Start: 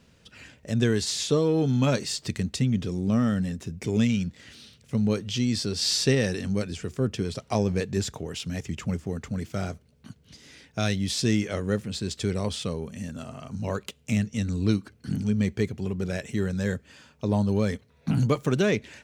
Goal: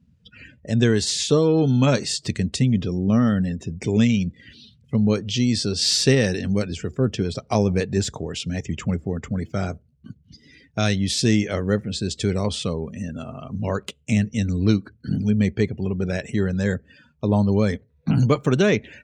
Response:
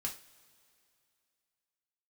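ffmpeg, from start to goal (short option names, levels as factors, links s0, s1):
-af "afftdn=nr=24:nf=-48,volume=1.78"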